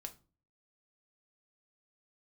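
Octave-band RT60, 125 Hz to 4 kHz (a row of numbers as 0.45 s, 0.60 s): 0.60 s, 0.50 s, 0.40 s, 0.35 s, 0.25 s, 0.25 s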